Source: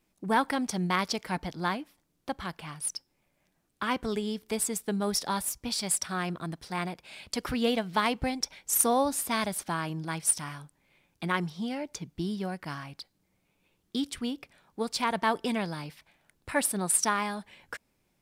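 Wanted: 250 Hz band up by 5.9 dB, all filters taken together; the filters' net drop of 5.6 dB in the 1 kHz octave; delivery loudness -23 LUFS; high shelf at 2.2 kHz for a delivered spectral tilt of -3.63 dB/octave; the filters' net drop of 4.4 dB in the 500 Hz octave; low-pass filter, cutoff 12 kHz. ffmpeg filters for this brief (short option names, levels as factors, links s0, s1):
-af "lowpass=12000,equalizer=f=250:t=o:g=8.5,equalizer=f=500:t=o:g=-6.5,equalizer=f=1000:t=o:g=-6.5,highshelf=f=2200:g=5,volume=1.68"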